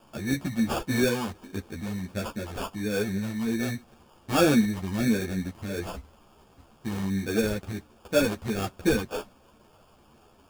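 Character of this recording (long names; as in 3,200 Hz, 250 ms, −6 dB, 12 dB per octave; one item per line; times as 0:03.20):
a quantiser's noise floor 10 bits, dither triangular
phaser sweep stages 8, 1.4 Hz, lowest notch 480–1,600 Hz
aliases and images of a low sample rate 2,000 Hz, jitter 0%
a shimmering, thickened sound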